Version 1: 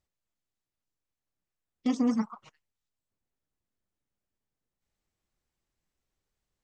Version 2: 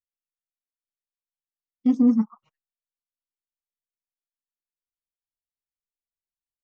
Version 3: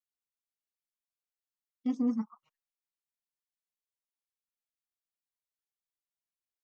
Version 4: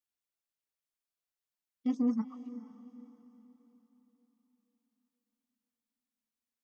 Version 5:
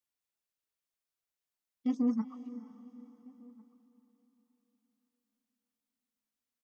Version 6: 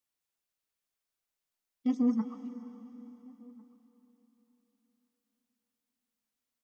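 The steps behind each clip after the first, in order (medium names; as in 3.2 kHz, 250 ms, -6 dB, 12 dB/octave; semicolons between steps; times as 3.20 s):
spectral contrast expander 1.5:1; trim +7 dB
bass shelf 470 Hz -9 dB; trim -4.5 dB
echo that smears into a reverb 460 ms, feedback 43%, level -14.5 dB
echo from a far wall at 240 m, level -24 dB
algorithmic reverb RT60 2.8 s, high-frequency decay 0.95×, pre-delay 45 ms, DRR 13 dB; trim +2 dB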